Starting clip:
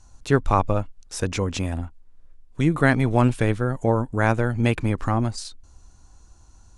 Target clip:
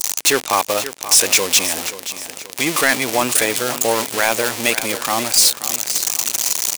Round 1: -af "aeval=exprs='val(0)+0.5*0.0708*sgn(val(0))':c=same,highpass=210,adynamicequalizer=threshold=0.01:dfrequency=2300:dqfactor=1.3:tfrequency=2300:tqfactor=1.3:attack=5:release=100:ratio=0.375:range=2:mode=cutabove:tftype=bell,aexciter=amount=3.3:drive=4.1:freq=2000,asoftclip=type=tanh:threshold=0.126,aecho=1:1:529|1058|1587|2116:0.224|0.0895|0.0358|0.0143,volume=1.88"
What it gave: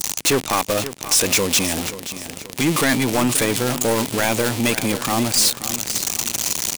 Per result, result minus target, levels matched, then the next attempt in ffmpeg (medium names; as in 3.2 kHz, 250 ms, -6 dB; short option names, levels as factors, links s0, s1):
250 Hz band +8.5 dB; saturation: distortion +8 dB
-af "aeval=exprs='val(0)+0.5*0.0708*sgn(val(0))':c=same,highpass=460,adynamicequalizer=threshold=0.01:dfrequency=2300:dqfactor=1.3:tfrequency=2300:tqfactor=1.3:attack=5:release=100:ratio=0.375:range=2:mode=cutabove:tftype=bell,aexciter=amount=3.3:drive=4.1:freq=2000,asoftclip=type=tanh:threshold=0.126,aecho=1:1:529|1058|1587|2116:0.224|0.0895|0.0358|0.0143,volume=1.88"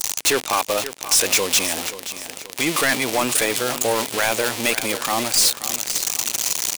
saturation: distortion +7 dB
-af "aeval=exprs='val(0)+0.5*0.0708*sgn(val(0))':c=same,highpass=460,adynamicequalizer=threshold=0.01:dfrequency=2300:dqfactor=1.3:tfrequency=2300:tqfactor=1.3:attack=5:release=100:ratio=0.375:range=2:mode=cutabove:tftype=bell,aexciter=amount=3.3:drive=4.1:freq=2000,asoftclip=type=tanh:threshold=0.299,aecho=1:1:529|1058|1587|2116:0.224|0.0895|0.0358|0.0143,volume=1.88"